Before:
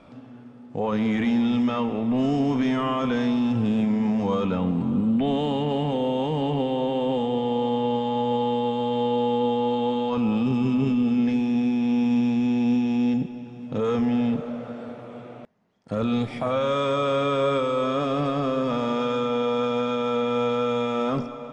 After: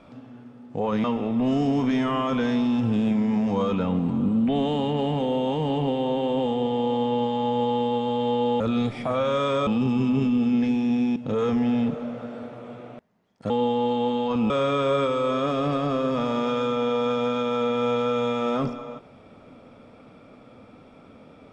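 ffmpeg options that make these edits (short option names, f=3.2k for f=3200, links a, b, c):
-filter_complex "[0:a]asplit=7[a][b][c][d][e][f][g];[a]atrim=end=1.042[h];[b]atrim=start=1.758:end=9.322[i];[c]atrim=start=15.958:end=17.032[j];[d]atrim=start=10.318:end=11.812[k];[e]atrim=start=13.618:end=15.962[l];[f]atrim=start=9.318:end=10.322[m];[g]atrim=start=17.028[n];[h][i]acrossfade=d=0.004:c1=hsin:c2=hsin[o];[o][j]acrossfade=d=0.004:c1=hsin:c2=hsin[p];[p][k]acrossfade=d=0.004:c1=hsin:c2=hsin[q];[q][l]acrossfade=d=0.004:c1=hsin:c2=hsin[r];[r][m]acrossfade=d=0.004:c1=hsin:c2=hsin[s];[s][n]acrossfade=d=0.004:c1=hsin:c2=hsin"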